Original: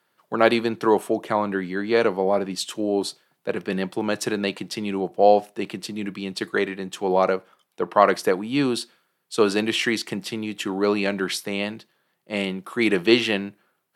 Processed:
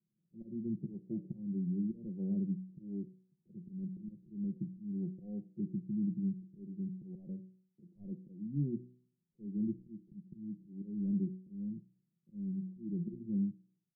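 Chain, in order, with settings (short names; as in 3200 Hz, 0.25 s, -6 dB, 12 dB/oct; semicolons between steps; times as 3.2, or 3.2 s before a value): de-esser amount 95%; auto swell 0.322 s; inverse Chebyshev low-pass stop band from 1300 Hz, stop band 80 dB; comb 5.6 ms, depth 63%; de-hum 62.15 Hz, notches 10; gain -2.5 dB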